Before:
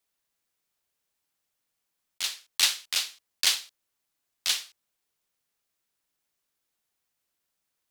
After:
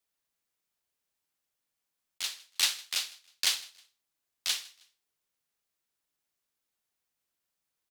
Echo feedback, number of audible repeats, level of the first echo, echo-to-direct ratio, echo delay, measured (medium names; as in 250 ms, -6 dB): 34%, 2, -23.0 dB, -22.5 dB, 158 ms